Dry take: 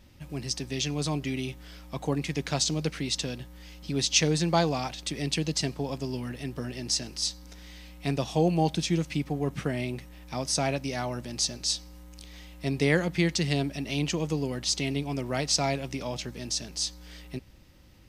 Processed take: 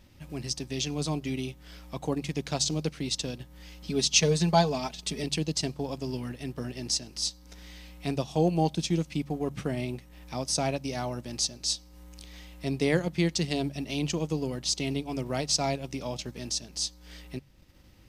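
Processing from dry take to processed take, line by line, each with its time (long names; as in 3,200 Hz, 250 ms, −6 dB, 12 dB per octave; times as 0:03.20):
0:03.89–0:05.24: comb filter 4.7 ms, depth 81%
whole clip: hum removal 71.08 Hz, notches 3; dynamic equaliser 1,800 Hz, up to −5 dB, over −47 dBFS, Q 1.4; transient designer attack −1 dB, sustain −6 dB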